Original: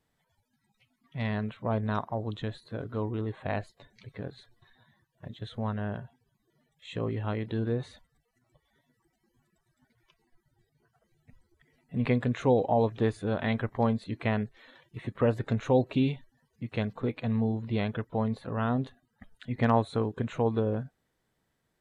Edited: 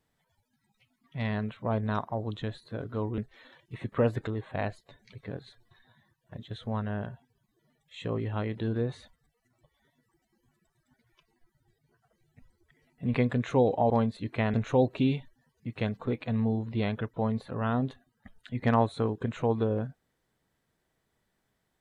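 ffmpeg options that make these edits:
-filter_complex "[0:a]asplit=5[a][b][c][d][e];[a]atrim=end=3.182[f];[b]atrim=start=14.408:end=15.502[g];[c]atrim=start=3.178:end=12.812[h];[d]atrim=start=13.768:end=14.412[i];[e]atrim=start=15.498[j];[f][g]acrossfade=d=0.004:c1=hsin:c2=hsin[k];[k][h]acrossfade=d=0.004:c1=hsin:c2=hsin[l];[l][i]acrossfade=d=0.004:c1=hsin:c2=hsin[m];[m][j]acrossfade=d=0.004:c1=hsin:c2=hsin"

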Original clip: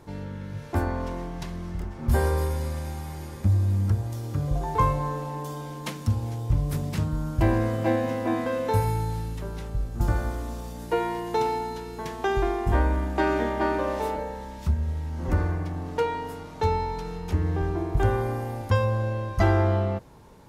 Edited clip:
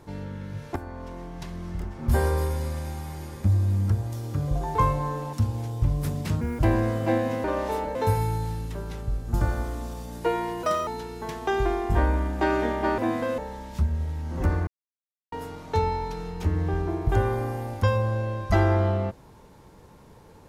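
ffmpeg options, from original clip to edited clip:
-filter_complex "[0:a]asplit=13[a][b][c][d][e][f][g][h][i][j][k][l][m];[a]atrim=end=0.76,asetpts=PTS-STARTPTS,afade=t=out:st=0.756:d=0.004:c=hsin:silence=0.199526[n];[b]atrim=start=0.76:end=5.332,asetpts=PTS-STARTPTS,afade=t=in:d=0.98:silence=0.199526[o];[c]atrim=start=6.008:end=7.094[p];[d]atrim=start=7.09:end=7.37,asetpts=PTS-STARTPTS,asetrate=68355,aresample=44100,atrim=end_sample=7966,asetpts=PTS-STARTPTS[q];[e]atrim=start=7.366:end=8.222[r];[f]atrim=start=13.748:end=14.262[s];[g]atrim=start=8.618:end=11.304[t];[h]atrim=start=11.3:end=11.64,asetpts=PTS-STARTPTS,asetrate=62181,aresample=44100,atrim=end_sample=10634,asetpts=PTS-STARTPTS[u];[i]atrim=start=11.636:end=13.752[v];[j]atrim=start=8.218:end=8.622[w];[k]atrim=start=14.258:end=15.55,asetpts=PTS-STARTPTS,afade=t=out:st=1.288:d=0.004:c=hsin[x];[l]atrim=start=15.55:end=16.2,asetpts=PTS-STARTPTS,volume=0[y];[m]atrim=start=16.2,asetpts=PTS-STARTPTS,afade=t=in:d=0.004:c=hsin[z];[n][o]concat=n=2:v=0:a=1[aa];[aa][p]acrossfade=d=0.004:c1=hsin:c2=hsin[ab];[ab][q]acrossfade=d=0.004:c1=hsin:c2=hsin[ac];[ac][r]acrossfade=d=0.004:c1=hsin:c2=hsin[ad];[ad][s]acrossfade=d=0.004:c1=hsin:c2=hsin[ae];[ae][t]acrossfade=d=0.004:c1=hsin:c2=hsin[af];[af][u]acrossfade=d=0.004:c1=hsin:c2=hsin[ag];[ag][v]acrossfade=d=0.004:c1=hsin:c2=hsin[ah];[ah][w]acrossfade=d=0.004:c1=hsin:c2=hsin[ai];[x][y][z]concat=n=3:v=0:a=1[aj];[ai][aj]acrossfade=d=0.004:c1=hsin:c2=hsin"

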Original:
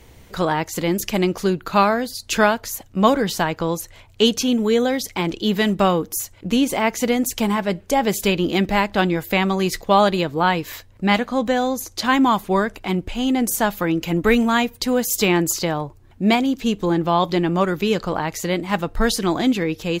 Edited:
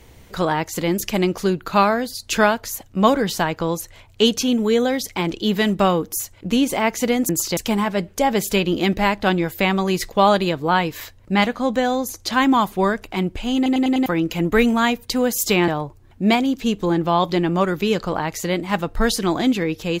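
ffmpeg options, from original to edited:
-filter_complex "[0:a]asplit=9[a][b][c][d][e][f][g][h][i];[a]atrim=end=7.292[j];[b]atrim=start=15.398:end=15.682[k];[c]atrim=start=7.288:end=13.382[l];[d]atrim=start=13.278:end=13.382[m];[e]atrim=start=13.278:end=13.382[n];[f]atrim=start=13.278:end=13.382[o];[g]atrim=start=13.278:end=13.382[p];[h]atrim=start=13.778:end=15.402[q];[i]atrim=start=15.678[r];[j][k]acrossfade=d=0.004:c1=hsin:c2=hsin[s];[s][l]acrossfade=d=0.004:c1=hsin:c2=hsin[t];[t][m]acrossfade=d=0.004:c1=hsin:c2=hsin[u];[u][n]acrossfade=d=0.004:c1=hsin:c2=hsin[v];[v][o]acrossfade=d=0.004:c1=hsin:c2=hsin[w];[w][p]acrossfade=d=0.004:c1=hsin:c2=hsin[x];[x][q]acrossfade=d=0.004:c1=hsin:c2=hsin[y];[y][r]acrossfade=d=0.004:c1=hsin:c2=hsin"

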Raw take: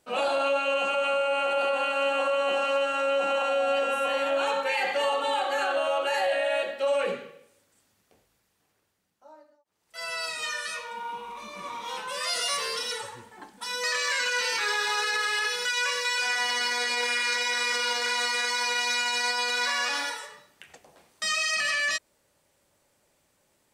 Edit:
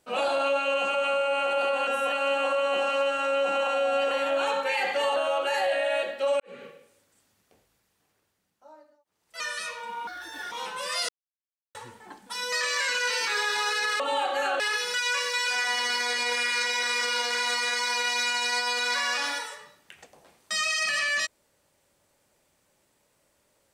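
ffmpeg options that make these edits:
-filter_complex "[0:a]asplit=13[a][b][c][d][e][f][g][h][i][j][k][l][m];[a]atrim=end=1.872[n];[b]atrim=start=3.858:end=4.112[o];[c]atrim=start=1.868:end=3.862[p];[d]atrim=start=4.108:end=5.162[q];[e]atrim=start=5.758:end=7,asetpts=PTS-STARTPTS,afade=t=out:st=1.238:d=0.004:c=hsin[r];[f]atrim=start=7:end=10.002,asetpts=PTS-STARTPTS,afade=t=in:d=0.25:c=qua[s];[g]atrim=start=10.478:end=11.154[t];[h]atrim=start=11.15:end=11.83,asetpts=PTS-STARTPTS,asetrate=67032,aresample=44100[u];[i]atrim=start=11.826:end=12.4,asetpts=PTS-STARTPTS,afade=t=out:st=0.57:d=0.004:c=hsin[v];[j]atrim=start=12.4:end=13.06,asetpts=PTS-STARTPTS,volume=0[w];[k]atrim=start=13.06:end=15.312,asetpts=PTS-STARTPTS,afade=t=in:d=0.004:c=hsin[x];[l]atrim=start=5.158:end=5.762[y];[m]atrim=start=15.308[z];[n][o]acrossfade=d=0.004:c1=hsin:c2=hsin[aa];[aa][p]acrossfade=d=0.004:c1=hsin:c2=hsin[ab];[ab][q]acrossfade=d=0.004:c1=hsin:c2=hsin[ac];[r][s]concat=n=2:v=0:a=1[ad];[ac][ad]acrossfade=d=0.004:c1=hsin:c2=hsin[ae];[ae][t]acrossfade=d=0.004:c1=hsin:c2=hsin[af];[af][u]acrossfade=d=0.004:c1=hsin:c2=hsin[ag];[v][w][x]concat=n=3:v=0:a=1[ah];[ag][ah]acrossfade=d=0.004:c1=hsin:c2=hsin[ai];[ai][y]acrossfade=d=0.004:c1=hsin:c2=hsin[aj];[aj][z]acrossfade=d=0.004:c1=hsin:c2=hsin"

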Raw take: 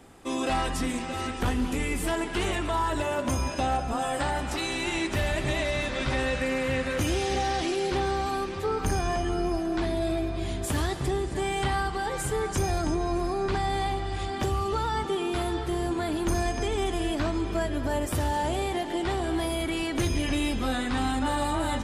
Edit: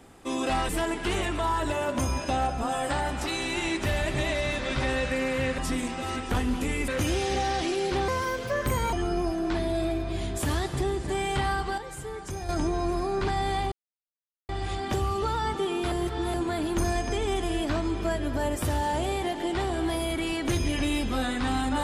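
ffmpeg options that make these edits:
-filter_complex "[0:a]asplit=11[a][b][c][d][e][f][g][h][i][j][k];[a]atrim=end=0.692[l];[b]atrim=start=1.988:end=6.882[m];[c]atrim=start=0.688:end=1.992[n];[d]atrim=start=6.878:end=8.084[o];[e]atrim=start=8.08:end=9.2,asetpts=PTS-STARTPTS,asetrate=58212,aresample=44100,atrim=end_sample=37418,asetpts=PTS-STARTPTS[p];[f]atrim=start=9.196:end=12.052[q];[g]atrim=start=12.048:end=12.762,asetpts=PTS-STARTPTS,volume=-8.5dB[r];[h]atrim=start=12.758:end=13.99,asetpts=PTS-STARTPTS,afade=t=out:st=1.228:d=0.004:c=hsin,apad=pad_dur=0.77[s];[i]atrim=start=13.99:end=15.422,asetpts=PTS-STARTPTS,afade=t=in:d=0.004:c=hsin[t];[j]atrim=start=15.418:end=15.842,asetpts=PTS-STARTPTS,areverse[u];[k]atrim=start=15.838[v];[l][m]acrossfade=d=0.004:c1=hsin:c2=hsin[w];[w][n]acrossfade=d=0.004:c1=hsin:c2=hsin[x];[x][o]acrossfade=d=0.004:c1=hsin:c2=hsin[y];[y][p]acrossfade=d=0.004:c1=hsin:c2=hsin[z];[z][q]acrossfade=d=0.004:c1=hsin:c2=hsin[aa];[aa][r]acrossfade=d=0.004:c1=hsin:c2=hsin[ab];[s][t]concat=n=2:v=0:a=1[ac];[ab][ac]acrossfade=d=0.004:c1=hsin:c2=hsin[ad];[ad][u]acrossfade=d=0.004:c1=hsin:c2=hsin[ae];[ae][v]acrossfade=d=0.004:c1=hsin:c2=hsin"

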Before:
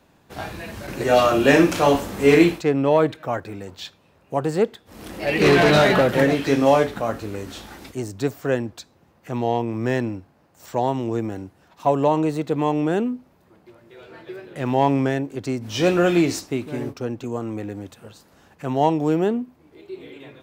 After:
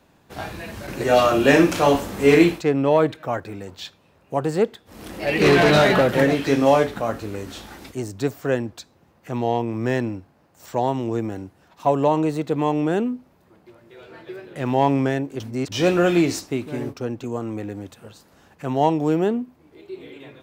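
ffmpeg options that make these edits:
-filter_complex "[0:a]asplit=3[a][b][c];[a]atrim=end=15.402[d];[b]atrim=start=15.398:end=15.722,asetpts=PTS-STARTPTS,areverse[e];[c]atrim=start=15.718[f];[d][e]acrossfade=d=0.004:c1=hsin:c2=hsin[g];[g][f]acrossfade=d=0.004:c1=hsin:c2=hsin"

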